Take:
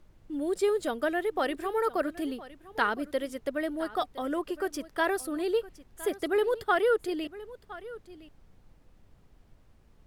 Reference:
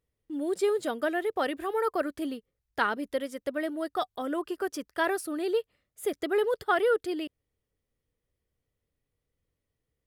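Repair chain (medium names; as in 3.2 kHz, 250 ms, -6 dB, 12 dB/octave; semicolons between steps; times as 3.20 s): noise print and reduce 25 dB; inverse comb 1013 ms -17.5 dB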